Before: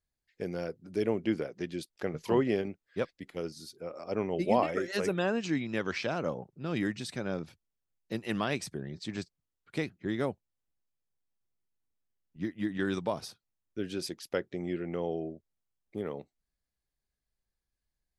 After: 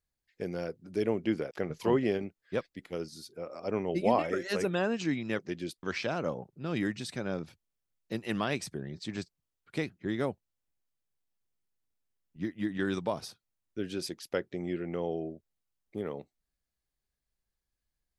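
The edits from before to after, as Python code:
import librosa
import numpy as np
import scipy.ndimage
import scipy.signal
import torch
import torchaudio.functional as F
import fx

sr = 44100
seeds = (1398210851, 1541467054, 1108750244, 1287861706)

y = fx.edit(x, sr, fx.move(start_s=1.51, length_s=0.44, to_s=5.83), tone=tone)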